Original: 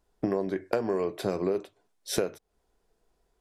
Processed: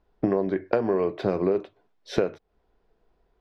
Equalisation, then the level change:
high-frequency loss of the air 240 metres
+5.0 dB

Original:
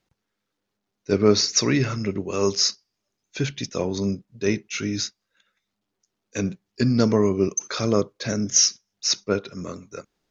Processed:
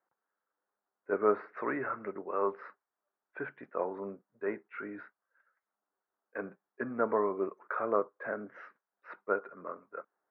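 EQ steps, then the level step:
high-pass filter 700 Hz 12 dB per octave
Butterworth low-pass 1,600 Hz 36 dB per octave
0.0 dB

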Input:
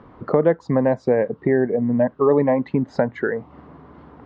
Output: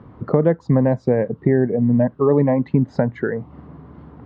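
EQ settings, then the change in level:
parametric band 110 Hz +11.5 dB 2.5 octaves
−3.0 dB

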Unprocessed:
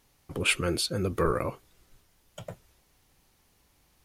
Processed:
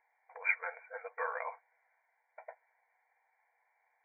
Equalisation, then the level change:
dynamic equaliser 1,200 Hz, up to +3 dB, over −43 dBFS, Q 1.3
linear-phase brick-wall band-pass 470–2,400 Hz
phaser with its sweep stopped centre 820 Hz, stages 8
0.0 dB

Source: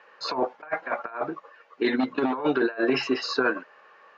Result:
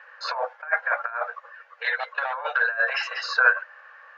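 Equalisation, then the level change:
linear-phase brick-wall high-pass 470 Hz
parametric band 1,600 Hz +12.5 dB 0.63 octaves
−1.5 dB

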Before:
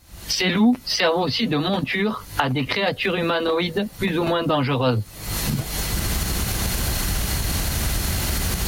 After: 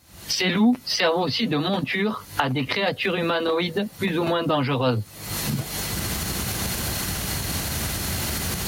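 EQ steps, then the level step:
high-pass filter 88 Hz 12 dB per octave
−1.5 dB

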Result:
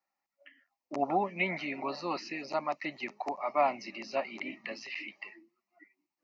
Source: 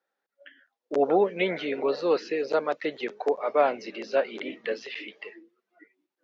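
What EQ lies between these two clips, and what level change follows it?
phaser with its sweep stopped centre 2,300 Hz, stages 8
0.0 dB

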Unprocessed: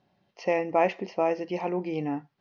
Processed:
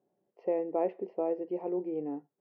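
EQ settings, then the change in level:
resonant band-pass 410 Hz, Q 2.4
high-frequency loss of the air 85 metres
0.0 dB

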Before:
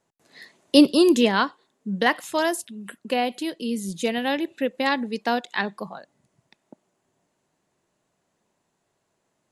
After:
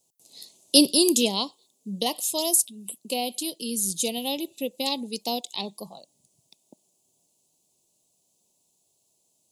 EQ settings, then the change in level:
Butterworth band-reject 1,600 Hz, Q 0.74
high-shelf EQ 2,700 Hz +11 dB
high-shelf EQ 6,100 Hz +12 dB
−5.5 dB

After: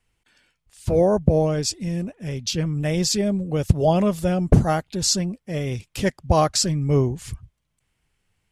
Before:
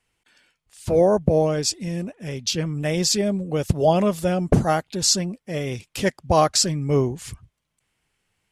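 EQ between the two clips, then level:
low-shelf EQ 130 Hz +11 dB
−2.0 dB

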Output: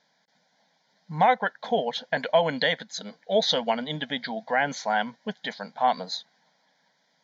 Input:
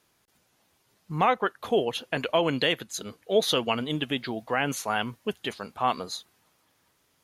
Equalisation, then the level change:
linear-phase brick-wall band-pass 150–7,700 Hz
high-shelf EQ 5,300 Hz −4 dB
phaser with its sweep stopped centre 1,800 Hz, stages 8
+5.5 dB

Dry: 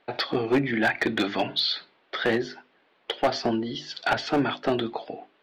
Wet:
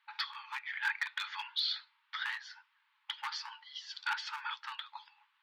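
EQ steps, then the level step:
linear-phase brick-wall high-pass 830 Hz
−8.0 dB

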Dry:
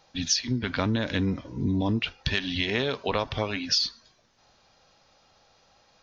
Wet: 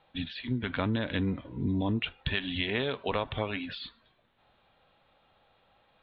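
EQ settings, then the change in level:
Butterworth low-pass 3,800 Hz 72 dB per octave
−3.5 dB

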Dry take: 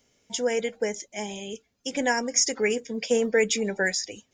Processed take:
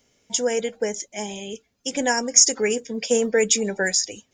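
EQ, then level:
dynamic equaliser 7,700 Hz, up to +8 dB, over −43 dBFS, Q 1.2
dynamic equaliser 2,100 Hz, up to −5 dB, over −43 dBFS, Q 3.9
+2.5 dB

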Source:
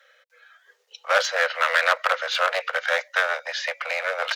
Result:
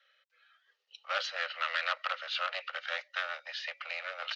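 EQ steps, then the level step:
loudspeaker in its box 390–3,600 Hz, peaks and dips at 470 Hz −9 dB, 700 Hz −6 dB, 990 Hz −9 dB, 1,600 Hz −9 dB, 2,200 Hz −8 dB, 3,500 Hz −6 dB
spectral tilt +4 dB per octave
−7.5 dB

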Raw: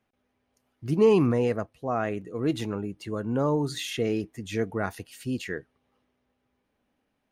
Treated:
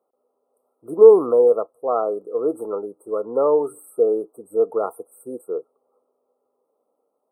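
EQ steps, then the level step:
dynamic equaliser 1,400 Hz, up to +5 dB, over −45 dBFS, Q 1.6
high-pass with resonance 470 Hz, resonance Q 3.7
linear-phase brick-wall band-stop 1,400–7,900 Hz
+1.0 dB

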